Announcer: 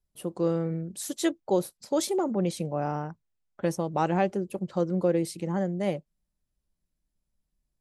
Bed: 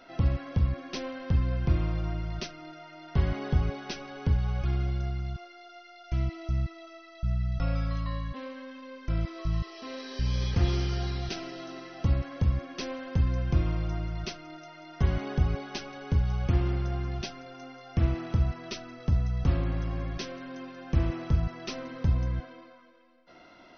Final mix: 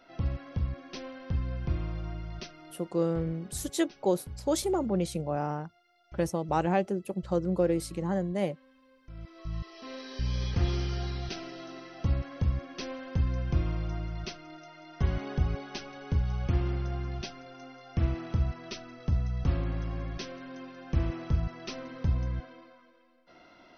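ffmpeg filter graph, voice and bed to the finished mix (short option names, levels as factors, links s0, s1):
-filter_complex "[0:a]adelay=2550,volume=0.841[s0];[1:a]volume=2.99,afade=t=out:st=2.63:d=0.61:silence=0.251189,afade=t=in:st=9.13:d=0.78:silence=0.177828[s1];[s0][s1]amix=inputs=2:normalize=0"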